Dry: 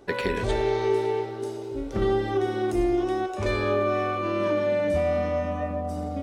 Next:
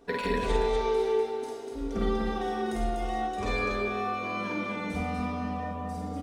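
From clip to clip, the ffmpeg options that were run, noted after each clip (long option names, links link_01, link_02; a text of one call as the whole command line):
ffmpeg -i in.wav -filter_complex "[0:a]aecho=1:1:4.3:0.77,asplit=2[link_01][link_02];[link_02]aecho=0:1:49.56|244.9:0.794|0.631[link_03];[link_01][link_03]amix=inputs=2:normalize=0,volume=-6.5dB" out.wav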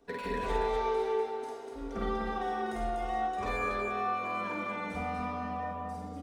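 ffmpeg -i in.wav -filter_complex "[0:a]acrossover=split=360|560|2000[link_01][link_02][link_03][link_04];[link_03]dynaudnorm=framelen=160:gausssize=5:maxgain=8.5dB[link_05];[link_04]asoftclip=type=hard:threshold=-39.5dB[link_06];[link_01][link_02][link_05][link_06]amix=inputs=4:normalize=0,volume=-7dB" out.wav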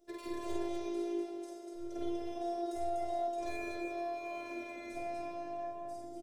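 ffmpeg -i in.wav -af "afftfilt=real='hypot(re,im)*cos(PI*b)':imag='0':win_size=512:overlap=0.75,firequalizer=gain_entry='entry(310,0);entry(550,8);entry(890,-10);entry(5700,5)':delay=0.05:min_phase=1,volume=-1.5dB" out.wav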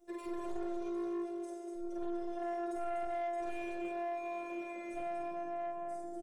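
ffmpeg -i in.wav -af "asoftclip=type=tanh:threshold=-37.5dB,aecho=1:1:5.7:0.86,volume=-1.5dB" out.wav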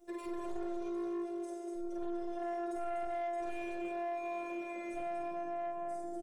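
ffmpeg -i in.wav -af "alimiter=level_in=13.5dB:limit=-24dB:level=0:latency=1:release=412,volume=-13.5dB,volume=3.5dB" out.wav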